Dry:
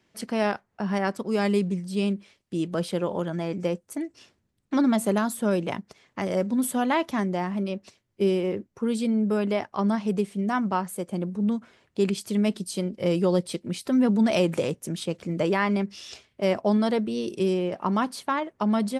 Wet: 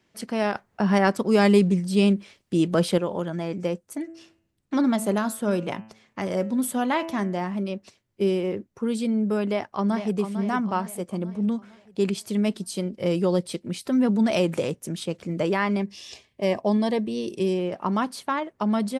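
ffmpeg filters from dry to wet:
-filter_complex "[0:a]asettb=1/sr,asplit=3[a][b][c];[a]atrim=end=0.554[d];[b]atrim=start=0.55:end=2.98,asetpts=PTS-STARTPTS,afade=t=in:d=0.004:c=qsin,afade=t=out:st=2.426:d=0.004:c=qsin,acontrast=62[e];[c]atrim=start=2.976[f];[d][e]acrossfade=d=0.004:c1=hsin:c2=qsin[g];[g][f]acrossfade=d=0.004:c1=qsin:c2=hsin,asettb=1/sr,asplit=3[h][i][j];[h]atrim=end=3.834[k];[i]atrim=start=3.83:end=7.51,asetpts=PTS-STARTPTS,afade=t=in:d=0.004:c=qsin,afade=t=out:st=3.676:d=0.004:c=qsin,bandreject=f=109.7:t=h:w=4,bandreject=f=219.4:t=h:w=4,bandreject=f=329.1:t=h:w=4,bandreject=f=438.8:t=h:w=4,bandreject=f=548.5:t=h:w=4,bandreject=f=658.2:t=h:w=4,bandreject=f=767.9:t=h:w=4,bandreject=f=877.6:t=h:w=4,bandreject=f=987.3:t=h:w=4,bandreject=f=1.097k:t=h:w=4,bandreject=f=1.2067k:t=h:w=4,bandreject=f=1.3164k:t=h:w=4,bandreject=f=1.4261k:t=h:w=4,bandreject=f=1.5358k:t=h:w=4,bandreject=f=1.6455k:t=h:w=4,bandreject=f=1.7552k:t=h:w=4,bandreject=f=1.8649k:t=h:w=4,bandreject=f=1.9746k:t=h:w=4,bandreject=f=2.0843k:t=h:w=4,bandreject=f=2.194k:t=h:w=4,bandreject=f=2.3037k:t=h:w=4,bandreject=f=2.4134k:t=h:w=4,bandreject=f=2.5231k:t=h:w=4,bandreject=f=2.6328k:t=h:w=4,bandreject=f=2.7425k:t=h:w=4,bandreject=f=2.8522k:t=h:w=4,bandreject=f=2.9619k:t=h:w=4,bandreject=f=3.0716k:t=h:w=4[l];[j]atrim=start=7.506[m];[k][l]acrossfade=d=0.004:c1=hsin:c2=qsin[n];[n][m]acrossfade=d=0.004:c1=qsin:c2=hsin,asplit=2[o][p];[p]afade=t=in:st=9.45:d=0.01,afade=t=out:st=10.15:d=0.01,aecho=0:1:450|900|1350|1800|2250|2700:0.334965|0.167483|0.0837414|0.0418707|0.0209353|0.0104677[q];[o][q]amix=inputs=2:normalize=0,asettb=1/sr,asplit=3[r][s][t];[r]atrim=end=15.794[u];[s]atrim=start=15.79:end=17.59,asetpts=PTS-STARTPTS,afade=t=in:d=0.004:c=qsin,afade=t=out:st=1.796:d=0.004:c=qsin,asuperstop=centerf=1400:order=8:qfactor=4.5[v];[t]atrim=start=17.586[w];[u][v]acrossfade=d=0.004:c1=hsin:c2=qsin[x];[x][w]acrossfade=d=0.004:c1=qsin:c2=hsin"

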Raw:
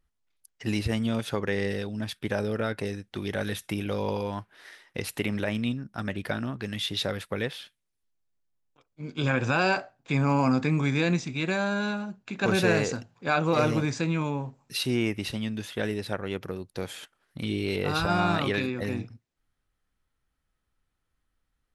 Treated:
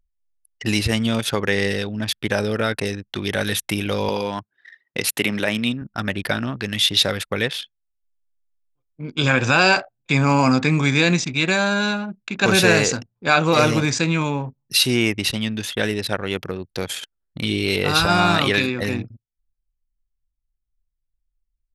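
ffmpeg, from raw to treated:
-filter_complex "[0:a]asettb=1/sr,asplit=3[a][b][c];[a]atrim=end=4.094[d];[b]atrim=start=4.09:end=5.82,asetpts=PTS-STARTPTS,afade=t=in:d=0.004:c=qsin,afade=t=out:st=1.726:d=0.004:c=qsin,highpass=140[e];[c]atrim=start=5.816[f];[d][e]acrossfade=d=0.004:c1=hsin:c2=qsin[g];[g][f]acrossfade=d=0.004:c1=qsin:c2=hsin,anlmdn=0.158,highshelf=f=2k:g=9.5,volume=6dB"

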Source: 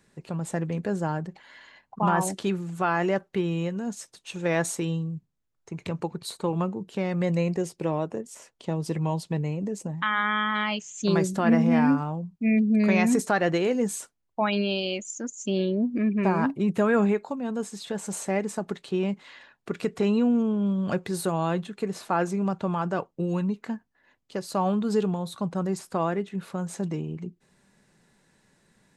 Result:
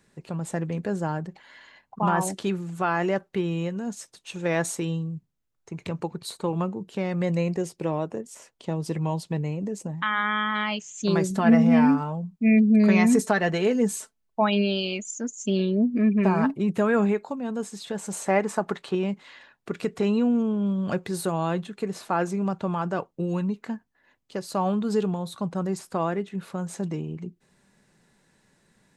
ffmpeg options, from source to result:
-filter_complex "[0:a]asettb=1/sr,asplit=3[a][b][c];[a]atrim=end=11.304[d];[b]atrim=start=11.3:end=16.54,asetpts=PTS-STARTPTS,afade=t=in:d=0.004:c=qsin,afade=t=out:st=5.236:d=0.004:c=qsin,aecho=1:1:4.6:0.54,atrim=end_sample=231084[e];[c]atrim=start=16.536[f];[d][e]acrossfade=d=0.004:c1=hsin:c2=qsin[g];[g][f]acrossfade=d=0.004:c1=qsin:c2=hsin,asettb=1/sr,asplit=3[h][i][j];[h]atrim=end=18.264[k];[i]atrim=start=18.26:end=18.95,asetpts=PTS-STARTPTS,afade=t=in:d=0.004:c=qsin,afade=t=out:st=0.686:d=0.004:c=qsin,equalizer=f=1.1k:w=0.62:g=9.5[l];[j]atrim=start=18.946[m];[k][l]acrossfade=d=0.004:c1=hsin:c2=qsin[n];[n][m]acrossfade=d=0.004:c1=qsin:c2=hsin"

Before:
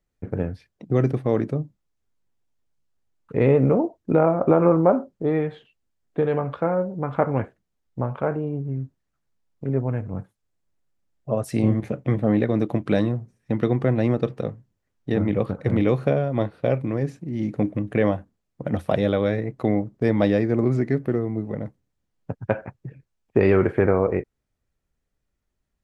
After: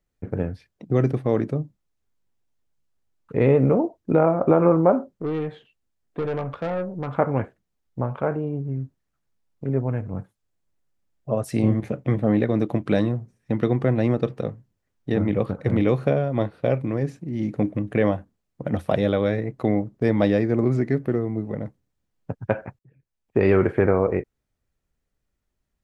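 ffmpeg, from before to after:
-filter_complex "[0:a]asettb=1/sr,asplit=3[a][b][c];[a]atrim=end=5.134[d];[b]atrim=start=5.13:end=7.08,asetpts=PTS-STARTPTS,afade=t=in:d=0.004:c=qsin,afade=t=out:st=1.946:d=0.004:c=qsin,aeval=exprs='(tanh(12.6*val(0)+0.3)-tanh(0.3))/12.6':c=same[e];[c]atrim=start=7.076[f];[d][e]acrossfade=d=0.004:c1=hsin:c2=qsin[g];[g][f]acrossfade=d=0.004:c1=qsin:c2=hsin,asplit=2[h][i];[h]atrim=end=22.79,asetpts=PTS-STARTPTS,afade=t=out:st=22.786:d=0.004:c=hsin[j];[i]atrim=start=22.79,asetpts=PTS-STARTPTS,afade=t=in:d=0.72[k];[j][k]concat=n=2:v=0:a=1"

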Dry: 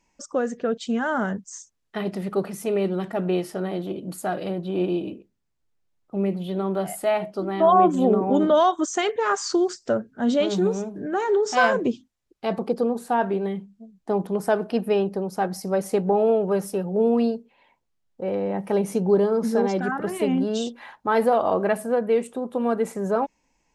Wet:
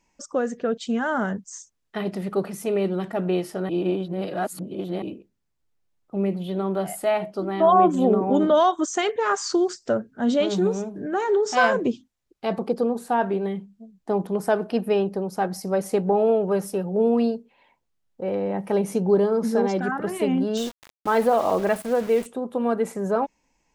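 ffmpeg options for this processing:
-filter_complex "[0:a]asettb=1/sr,asplit=3[a][b][c];[a]atrim=end=20.574[d];[b]atrim=start=20.57:end=22.26,asetpts=PTS-STARTPTS,afade=t=in:d=0.004:c=qsin,afade=t=out:st=1.686:d=0.004:c=qsin,aeval=exprs='val(0)*gte(abs(val(0)),0.02)':c=same[e];[c]atrim=start=22.256[f];[d][e]acrossfade=d=0.004:c1=hsin:c2=qsin[g];[g][f]acrossfade=d=0.004:c1=qsin:c2=hsin,asplit=3[h][i][j];[h]atrim=end=3.692[k];[i]atrim=start=3.688:end=5.022,asetpts=PTS-STARTPTS,areverse[l];[j]atrim=start=5.018[m];[k][l]acrossfade=d=0.004:c1=hsin:c2=hsin[n];[n][m]acrossfade=d=0.004:c1=hsin:c2=hsin"

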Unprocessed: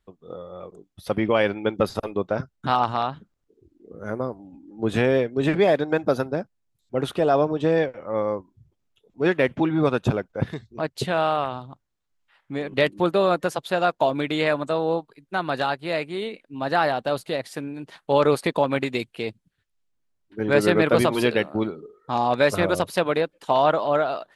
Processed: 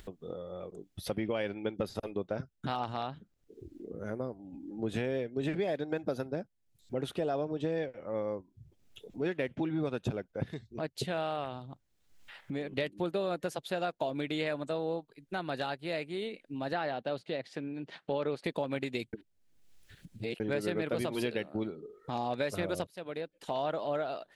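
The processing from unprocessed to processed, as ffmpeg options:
-filter_complex "[0:a]asettb=1/sr,asplit=3[a][b][c];[a]atrim=end=16.734[d];[b]atrim=start=16.73:end=18.44,asetpts=PTS-STARTPTS,afade=t=in:d=0.004:c=qsin,afade=t=out:st=1.706:d=0.004:c=qsin,highpass=110,lowpass=4.2k[e];[c]atrim=start=18.436[f];[d][e]acrossfade=d=0.004:c1=hsin:c2=qsin[g];[g][f]acrossfade=d=0.004:c1=qsin:c2=hsin,asplit=4[h][i][j][k];[h]atrim=end=19.132[l];[i]atrim=start=19.128:end=20.402,asetpts=PTS-STARTPTS,areverse[m];[j]atrim=start=20.398:end=22.87,asetpts=PTS-STARTPTS,afade=t=out:st=2.468:d=0.004:c=hsin:silence=0.0944061[n];[k]atrim=start=22.87,asetpts=PTS-STARTPTS,afade=t=in:d=0.99:silence=0.0944061[o];[l][m]acrossfade=d=0.004:c1=hsin:c2=hsin[p];[n][o]concat=n=2:v=0:a=1[q];[p][q]acrossfade=d=0.004:c1=hsin:c2=hsin,acompressor=mode=upward:threshold=-25dB:ratio=2.5,equalizer=f=1.1k:w=1.6:g=-7,acompressor=threshold=-21dB:ratio=6,volume=-7.5dB"

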